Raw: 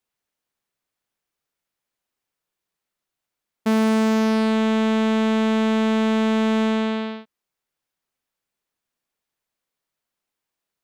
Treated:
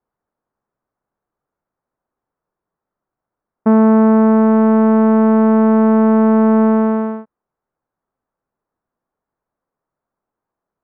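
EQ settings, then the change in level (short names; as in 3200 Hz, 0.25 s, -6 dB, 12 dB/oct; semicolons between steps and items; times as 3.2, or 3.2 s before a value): LPF 1300 Hz 24 dB/oct; +8.5 dB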